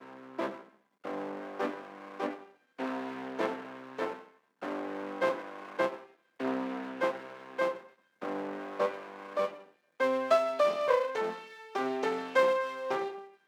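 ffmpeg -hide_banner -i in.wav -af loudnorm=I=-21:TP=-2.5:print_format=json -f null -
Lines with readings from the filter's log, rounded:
"input_i" : "-32.6",
"input_tp" : "-12.3",
"input_lra" : "7.4",
"input_thresh" : "-43.2",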